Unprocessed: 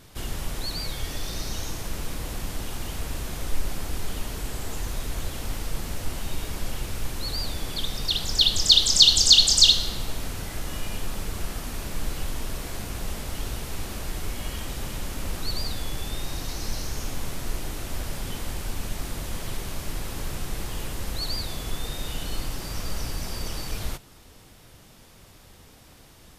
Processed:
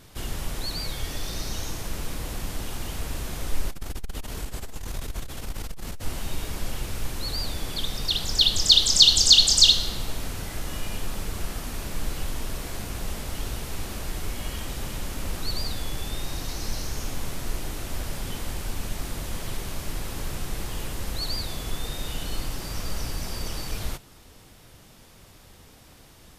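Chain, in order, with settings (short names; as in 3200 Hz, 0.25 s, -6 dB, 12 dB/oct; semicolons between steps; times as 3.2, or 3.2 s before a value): 3.7–6.03 core saturation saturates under 74 Hz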